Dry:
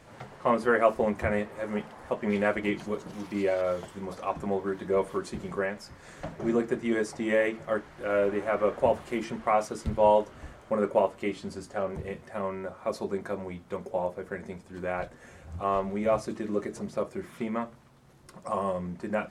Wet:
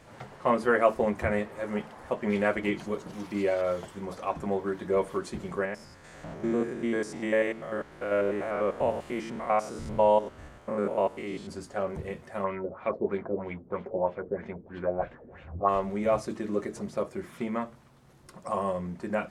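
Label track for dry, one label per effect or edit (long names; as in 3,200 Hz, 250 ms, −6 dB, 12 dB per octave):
5.650000	11.490000	spectrum averaged block by block every 100 ms
12.440000	15.690000	auto-filter low-pass sine 3.1 Hz 360–3,100 Hz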